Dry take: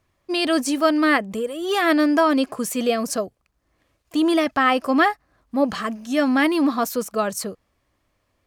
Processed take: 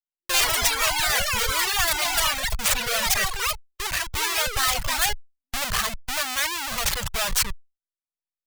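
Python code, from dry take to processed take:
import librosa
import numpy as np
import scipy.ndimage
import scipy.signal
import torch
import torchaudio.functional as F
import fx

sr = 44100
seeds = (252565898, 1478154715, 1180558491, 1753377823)

y = fx.tracing_dist(x, sr, depth_ms=0.05)
y = fx.schmitt(y, sr, flips_db=-28.0)
y = fx.echo_pitch(y, sr, ms=104, semitones=7, count=3, db_per_echo=-3.0)
y = fx.dereverb_blind(y, sr, rt60_s=1.1)
y = fx.tone_stack(y, sr, knobs='10-0-10')
y = y * librosa.db_to_amplitude(7.0)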